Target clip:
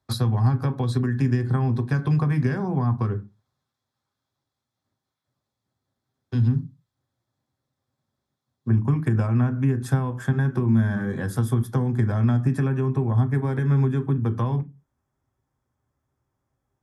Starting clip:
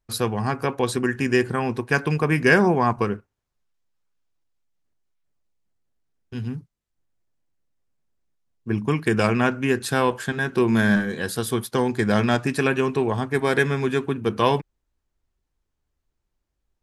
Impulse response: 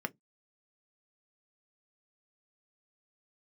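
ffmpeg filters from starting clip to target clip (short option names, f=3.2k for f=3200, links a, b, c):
-filter_complex "[0:a]acompressor=threshold=-20dB:ratio=6,asetnsamples=n=441:p=0,asendcmd='8.69 equalizer g -3',equalizer=f=4.1k:w=2.8:g=15[a];[1:a]atrim=start_sample=2205,asetrate=27342,aresample=44100[b];[a][b]afir=irnorm=-1:irlink=0,acrossover=split=210[c][d];[d]acompressor=threshold=-31dB:ratio=5[e];[c][e]amix=inputs=2:normalize=0,highpass=75"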